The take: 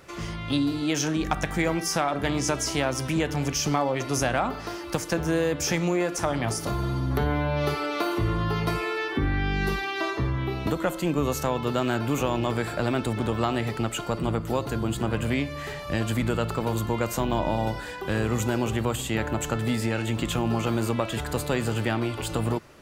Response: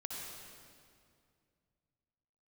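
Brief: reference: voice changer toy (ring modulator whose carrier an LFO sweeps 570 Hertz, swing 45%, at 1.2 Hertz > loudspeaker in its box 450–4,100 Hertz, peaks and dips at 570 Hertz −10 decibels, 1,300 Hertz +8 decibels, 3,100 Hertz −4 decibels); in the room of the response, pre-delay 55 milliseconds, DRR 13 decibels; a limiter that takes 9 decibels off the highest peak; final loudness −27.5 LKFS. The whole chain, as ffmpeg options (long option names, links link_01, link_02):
-filter_complex "[0:a]alimiter=limit=-20.5dB:level=0:latency=1,asplit=2[link_01][link_02];[1:a]atrim=start_sample=2205,adelay=55[link_03];[link_02][link_03]afir=irnorm=-1:irlink=0,volume=-12.5dB[link_04];[link_01][link_04]amix=inputs=2:normalize=0,aeval=exprs='val(0)*sin(2*PI*570*n/s+570*0.45/1.2*sin(2*PI*1.2*n/s))':channel_layout=same,highpass=450,equalizer=frequency=570:width_type=q:width=4:gain=-10,equalizer=frequency=1300:width_type=q:width=4:gain=8,equalizer=frequency=3100:width_type=q:width=4:gain=-4,lowpass=frequency=4100:width=0.5412,lowpass=frequency=4100:width=1.3066,volume=6.5dB"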